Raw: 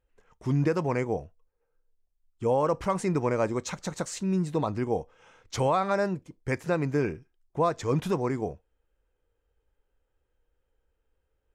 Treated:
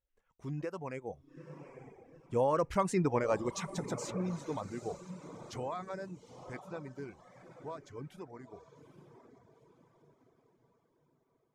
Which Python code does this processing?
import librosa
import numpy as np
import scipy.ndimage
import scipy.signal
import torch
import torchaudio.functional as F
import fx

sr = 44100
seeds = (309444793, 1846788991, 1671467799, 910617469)

y = fx.doppler_pass(x, sr, speed_mps=15, closest_m=11.0, pass_at_s=2.94)
y = fx.echo_diffused(y, sr, ms=863, feedback_pct=44, wet_db=-10)
y = fx.dereverb_blind(y, sr, rt60_s=0.89)
y = y * librosa.db_to_amplitude(-2.0)